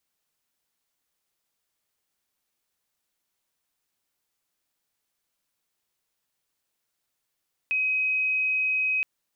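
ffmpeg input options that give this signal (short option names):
-f lavfi -i "sine=f=2530:d=1.32:r=44100,volume=-3.94dB"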